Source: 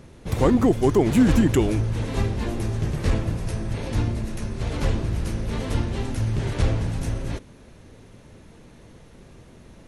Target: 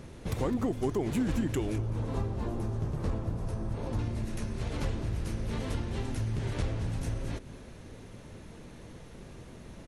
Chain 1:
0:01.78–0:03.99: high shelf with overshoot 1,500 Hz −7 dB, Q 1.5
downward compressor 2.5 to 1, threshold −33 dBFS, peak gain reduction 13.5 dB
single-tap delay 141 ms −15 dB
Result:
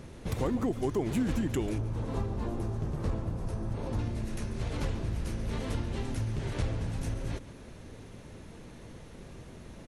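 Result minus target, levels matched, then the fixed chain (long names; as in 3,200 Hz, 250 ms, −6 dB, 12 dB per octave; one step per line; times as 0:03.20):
echo 66 ms early
0:01.78–0:03.99: high shelf with overshoot 1,500 Hz −7 dB, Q 1.5
downward compressor 2.5 to 1, threshold −33 dBFS, peak gain reduction 13.5 dB
single-tap delay 207 ms −15 dB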